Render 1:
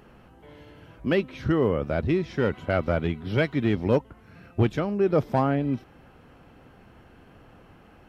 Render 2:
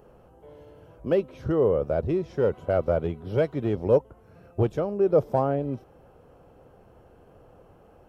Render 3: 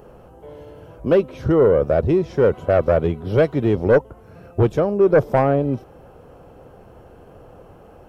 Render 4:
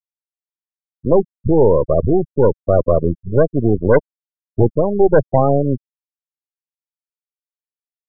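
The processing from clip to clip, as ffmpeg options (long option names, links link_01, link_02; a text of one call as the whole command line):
ffmpeg -i in.wav -af "equalizer=frequency=250:width_type=o:width=1:gain=-6,equalizer=frequency=500:width_type=o:width=1:gain=8,equalizer=frequency=2000:width_type=o:width=1:gain=-10,equalizer=frequency=4000:width_type=o:width=1:gain=-7,volume=-2dB" out.wav
ffmpeg -i in.wav -af "aeval=exprs='0.376*sin(PI/2*1.78*val(0)/0.376)':channel_layout=same" out.wav
ffmpeg -i in.wav -af "aeval=exprs='if(lt(val(0),0),0.251*val(0),val(0))':channel_layout=same,afftfilt=real='re*gte(hypot(re,im),0.178)':imag='im*gte(hypot(re,im),0.178)':win_size=1024:overlap=0.75,volume=6dB" out.wav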